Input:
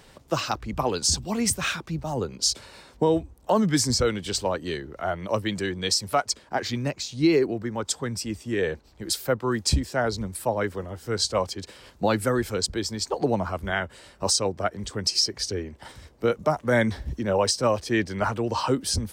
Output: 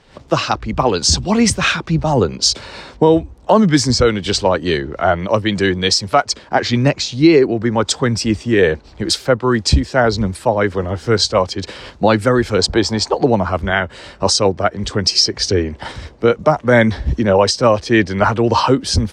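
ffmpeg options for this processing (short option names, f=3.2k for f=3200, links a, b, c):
-filter_complex "[0:a]asettb=1/sr,asplit=3[a][b][c];[a]atrim=end=12.594[d];[b]atrim=start=12.59:end=13.11,asetpts=PTS-STARTPTS,afade=t=in:d=0.004:c=qsin,afade=t=out:st=0.516:d=0.004:c=qsin,equalizer=f=810:t=o:w=1:g=10.5[e];[c]atrim=start=13.106[f];[d][e]acrossfade=d=0.004:c1=hsin:c2=qsin[g];[g][f]acrossfade=d=0.004:c1=qsin:c2=hsin,lowpass=5.3k,dynaudnorm=f=100:g=3:m=15.5dB"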